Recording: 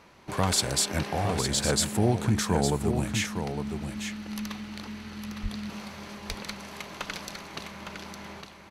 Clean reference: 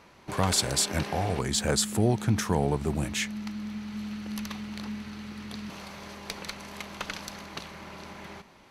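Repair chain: 5.42–5.54 HPF 140 Hz 24 dB/oct; inverse comb 0.859 s -7 dB

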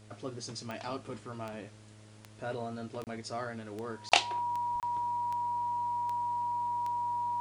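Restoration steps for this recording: de-click; de-hum 106.7 Hz, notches 6; notch 960 Hz, Q 30; interpolate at 3.04/4.09/4.8, 28 ms

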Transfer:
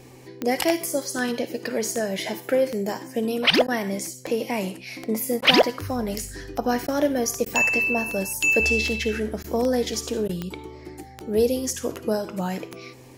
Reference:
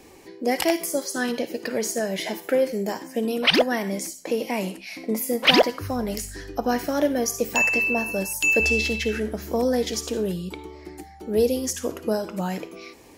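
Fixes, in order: de-click; de-hum 127.3 Hz, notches 4; interpolate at 3.67/5.41/6.87/7.45/9.43/10.28, 10 ms

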